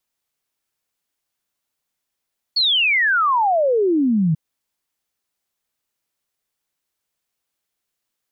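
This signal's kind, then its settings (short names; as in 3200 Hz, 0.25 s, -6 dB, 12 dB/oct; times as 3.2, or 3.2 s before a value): log sweep 4500 Hz -> 150 Hz 1.79 s -14 dBFS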